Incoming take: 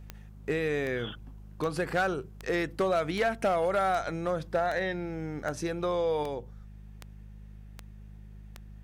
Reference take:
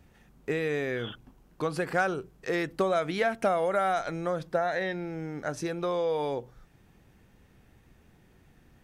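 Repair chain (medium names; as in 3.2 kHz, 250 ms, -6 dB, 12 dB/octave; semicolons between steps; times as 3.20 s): clip repair -20.5 dBFS; de-click; de-hum 51.5 Hz, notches 4; trim 0 dB, from 6.23 s +3.5 dB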